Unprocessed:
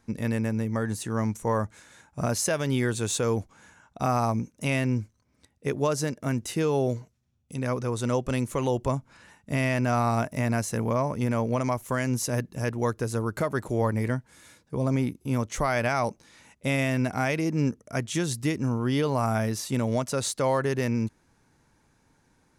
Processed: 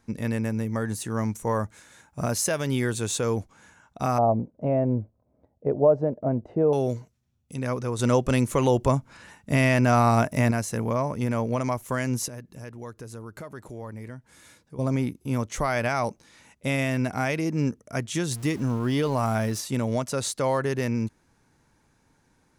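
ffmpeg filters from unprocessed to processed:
-filter_complex "[0:a]asettb=1/sr,asplit=3[s0][s1][s2];[s0]atrim=end=0.454[s3];[s1]atrim=start=0.45:end=3.01,asetpts=PTS-STARTPTS,afade=t=in:d=0.004:c=qsin,afade=t=out:st=2.556:d=0.004:c=qsin,highshelf=f=12000:g=7[s4];[s2]atrim=start=3.006[s5];[s3][s4]acrossfade=d=0.004:c1=hsin:c2=qsin[s6];[s6][s5]acrossfade=d=0.004:c1=qsin:c2=hsin,asettb=1/sr,asplit=3[s7][s8][s9];[s7]atrim=end=4.184[s10];[s8]atrim=start=4.18:end=6.73,asetpts=PTS-STARTPTS,afade=t=in:d=0.004:c=qsin,afade=t=out:st=2.546:d=0.004:c=qsin,lowpass=f=650:t=q:w=3.4[s11];[s9]atrim=start=6.726[s12];[s10][s11]acrossfade=d=0.004:c1=hsin:c2=qsin[s13];[s13][s12]acrossfade=d=0.004:c1=qsin:c2=hsin,asettb=1/sr,asplit=3[s14][s15][s16];[s14]atrim=end=7.994[s17];[s15]atrim=start=7.99:end=10.51,asetpts=PTS-STARTPTS,afade=t=in:d=0.004:c=qsin,afade=t=out:st=2.516:d=0.004:c=qsin,acontrast=25[s18];[s16]atrim=start=10.506[s19];[s17][s18]acrossfade=d=0.004:c1=hsin:c2=qsin[s20];[s20][s19]acrossfade=d=0.004:c1=qsin:c2=hsin,asettb=1/sr,asplit=3[s21][s22][s23];[s21]atrim=end=12.284[s24];[s22]atrim=start=12.28:end=14.79,asetpts=PTS-STARTPTS,afade=t=in:d=0.004:c=qsin,afade=t=out:st=2.506:d=0.004:c=qsin,acompressor=threshold=0.00562:ratio=2:attack=3.2:release=140:knee=1:detection=peak[s25];[s23]atrim=start=14.786[s26];[s24][s25]acrossfade=d=0.004:c1=hsin:c2=qsin[s27];[s27][s26]acrossfade=d=0.004:c1=qsin:c2=hsin,asettb=1/sr,asplit=3[s28][s29][s30];[s28]atrim=end=18.314[s31];[s29]atrim=start=18.31:end=19.61,asetpts=PTS-STARTPTS,afade=t=in:d=0.004:c=qsin,afade=t=out:st=1.296:d=0.004:c=qsin,aeval=exprs='val(0)+0.5*0.0112*sgn(val(0))':c=same[s32];[s30]atrim=start=19.606[s33];[s31][s32]acrossfade=d=0.004:c1=hsin:c2=qsin[s34];[s34][s33]acrossfade=d=0.004:c1=qsin:c2=hsin"

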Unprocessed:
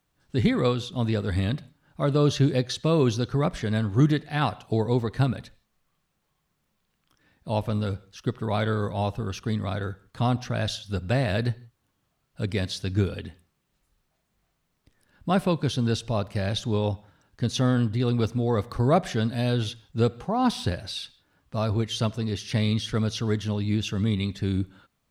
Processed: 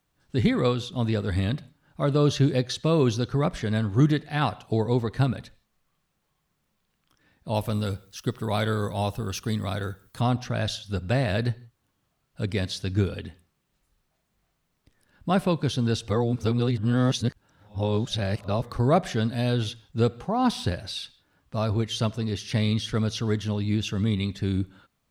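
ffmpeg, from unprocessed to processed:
-filter_complex "[0:a]asettb=1/sr,asplit=3[s0][s1][s2];[s0]atrim=end=7.544[s3];[s1]atrim=start=7.54:end=10.21,asetpts=PTS-STARTPTS,afade=t=in:d=0.004:c=qsin,afade=t=out:st=2.666:d=0.004:c=qsin,aemphasis=mode=production:type=50fm[s4];[s2]atrim=start=10.206[s5];[s3][s4]acrossfade=d=0.004:c1=hsin:c2=qsin[s6];[s6][s5]acrossfade=d=0.004:c1=qsin:c2=hsin,asplit=3[s7][s8][s9];[s7]atrim=end=16.092[s10];[s8]atrim=start=16.088:end=18.622,asetpts=PTS-STARTPTS,areverse[s11];[s9]atrim=start=18.618[s12];[s10][s11]acrossfade=d=0.004:c1=hsin:c2=hsin[s13];[s13][s12]acrossfade=d=0.004:c1=hsin:c2=hsin"

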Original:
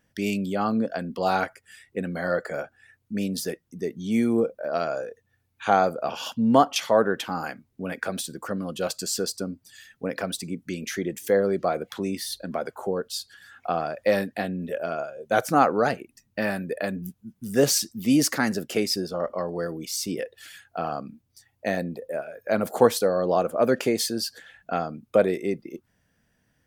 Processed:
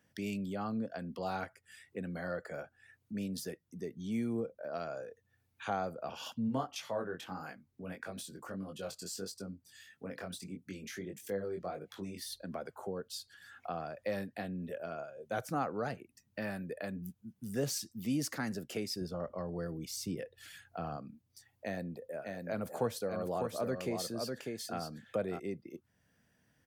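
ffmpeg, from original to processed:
-filter_complex "[0:a]asplit=3[s0][s1][s2];[s0]afade=t=out:st=6.47:d=0.02[s3];[s1]flanger=delay=19.5:depth=3.6:speed=1.6,afade=t=in:st=6.47:d=0.02,afade=t=out:st=12.21:d=0.02[s4];[s2]afade=t=in:st=12.21:d=0.02[s5];[s3][s4][s5]amix=inputs=3:normalize=0,asettb=1/sr,asplit=3[s6][s7][s8];[s6]atrim=end=19.014[s9];[s7]atrim=start=19.01:end=20.97,asetpts=PTS-STARTPTS,afade=t=in:d=0.004:c=qsin,afade=t=out:st=1.956:d=0.004:c=qsin,lowshelf=f=180:g=9.5[s10];[s8]atrim=start=20.966[s11];[s9][s10]acrossfade=d=0.004:c1=hsin:c2=qsin[s12];[s12][s11]acrossfade=d=0.004:c1=qsin:c2=hsin,asplit=3[s13][s14][s15];[s13]afade=t=out:st=22.2:d=0.02[s16];[s14]aecho=1:1:599:0.531,afade=t=in:st=22.2:d=0.02,afade=t=out:st=25.38:d=0.02[s17];[s15]afade=t=in:st=25.38:d=0.02[s18];[s16][s17][s18]amix=inputs=3:normalize=0,highpass=68,acrossover=split=130[s19][s20];[s20]acompressor=threshold=0.00251:ratio=1.5[s21];[s19][s21]amix=inputs=2:normalize=0,volume=0.708"

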